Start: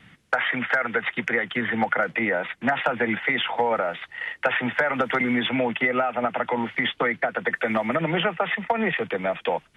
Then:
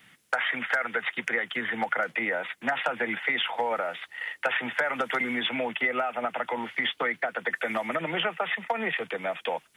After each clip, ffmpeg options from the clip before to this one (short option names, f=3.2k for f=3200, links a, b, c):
-af "aemphasis=mode=production:type=bsi,volume=-4.5dB"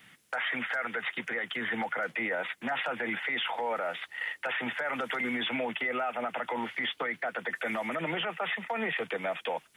-af "alimiter=limit=-23.5dB:level=0:latency=1:release=11"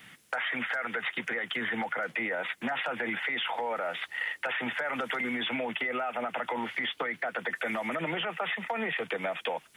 -af "acompressor=threshold=-33dB:ratio=6,volume=4.5dB"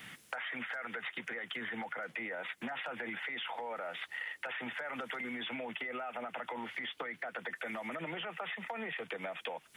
-af "acompressor=threshold=-43dB:ratio=3,volume=2dB"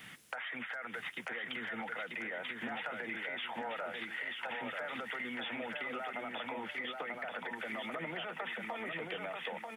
-af "aecho=1:1:939|1878|2817|3756:0.668|0.227|0.0773|0.0263,volume=-1.5dB"